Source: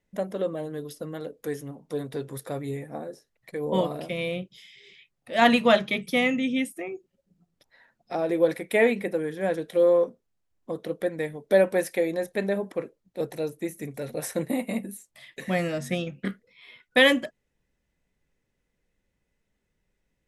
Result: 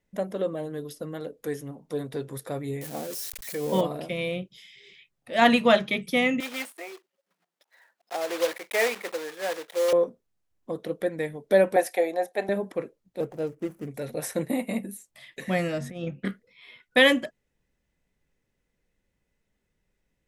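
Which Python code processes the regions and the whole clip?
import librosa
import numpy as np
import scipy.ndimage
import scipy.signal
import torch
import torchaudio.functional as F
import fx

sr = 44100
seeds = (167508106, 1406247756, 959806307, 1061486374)

y = fx.chain(x, sr, fx.crossing_spikes(level_db=-28.5),
    fx.sustainer(db_per_s=34.0), at=(2.81, 3.81))
y = fx.chain(y, sr, fx.block_float(bits=3),
    fx.highpass(hz=590.0, slope=12),
    fx.high_shelf(hz=3800.0, db=-6.0), at=(6.4, 9.93))
y = fx.chain(y, sr, fx.highpass(hz=380.0, slope=12),
    fx.peak_eq(hz=740.0, db=14.5, octaves=0.39),
    fx.band_widen(depth_pct=40), at=(11.76, 12.49))
y = fx.chain(y, sr, fx.median_filter(points=25),
    fx.peak_eq(hz=3900.0, db=-8.0, octaves=0.61), at=(13.2, 13.9))
y = fx.chain(y, sr, fx.high_shelf(hz=2300.0, db=-9.0),
    fx.over_compress(threshold_db=-32.0, ratio=-0.5), at=(15.81, 16.24))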